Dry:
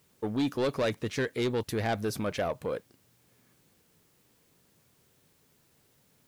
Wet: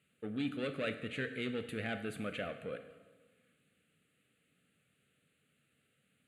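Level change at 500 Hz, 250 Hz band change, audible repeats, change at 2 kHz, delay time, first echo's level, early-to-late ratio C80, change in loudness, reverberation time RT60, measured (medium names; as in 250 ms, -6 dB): -10.0 dB, -7.0 dB, no echo, -3.5 dB, no echo, no echo, 12.0 dB, -8.0 dB, 1.4 s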